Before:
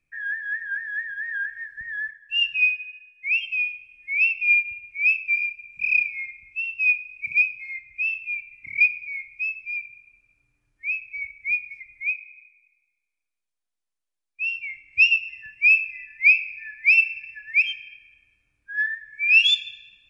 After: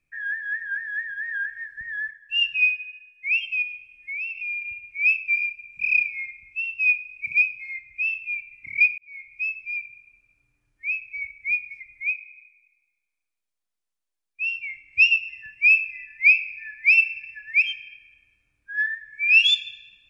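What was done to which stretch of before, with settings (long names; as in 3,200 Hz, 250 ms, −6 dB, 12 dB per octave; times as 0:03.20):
0:03.62–0:04.62: downward compressor 4 to 1, threshold −30 dBFS
0:08.98–0:09.42: fade in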